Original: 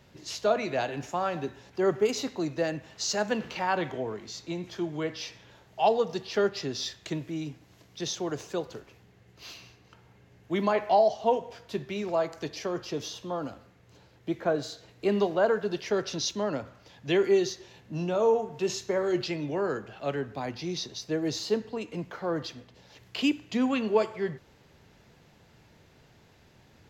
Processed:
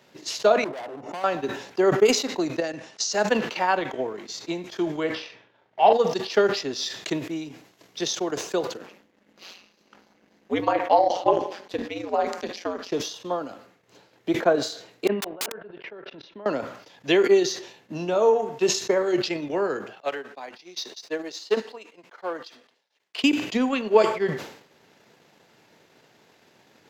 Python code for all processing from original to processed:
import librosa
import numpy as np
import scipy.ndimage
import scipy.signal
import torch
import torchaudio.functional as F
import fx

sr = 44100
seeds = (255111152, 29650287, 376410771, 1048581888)

y = fx.chain(x, sr, fx.savgol(points=65),
    fx.clip_hard(threshold_db=-36.0),
    fx.pre_swell(db_per_s=26.0), at=(0.64, 1.24))
y = fx.chain(y, sr, fx.peak_eq(hz=5700.0, db=7.0, octaves=0.48),
    fx.level_steps(step_db=11),
    fx.resample_bad(factor=2, down='none', up='filtered'), at=(2.6, 3.13))
y = fx.chain(y, sr, fx.law_mismatch(coded='A'),
    fx.lowpass(hz=2800.0, slope=12),
    fx.doubler(ms=42.0, db=-4.5), at=(5.15, 5.93))
y = fx.chain(y, sr, fx.high_shelf(hz=4500.0, db=-6.0),
    fx.ring_mod(carrier_hz=91.0),
    fx.echo_wet_highpass(ms=288, feedback_pct=57, hz=5200.0, wet_db=-13.0), at=(8.77, 12.92))
y = fx.chain(y, sr, fx.lowpass(hz=2700.0, slope=24),
    fx.level_steps(step_db=22),
    fx.overflow_wrap(gain_db=29.5), at=(15.07, 16.46))
y = fx.chain(y, sr, fx.weighting(curve='A'),
    fx.leveller(passes=1),
    fx.upward_expand(threshold_db=-42.0, expansion=2.5), at=(20.0, 23.24))
y = scipy.signal.sosfilt(scipy.signal.butter(2, 260.0, 'highpass', fs=sr, output='sos'), y)
y = fx.transient(y, sr, attack_db=5, sustain_db=-10)
y = fx.sustainer(y, sr, db_per_s=91.0)
y = F.gain(torch.from_numpy(y), 3.5).numpy()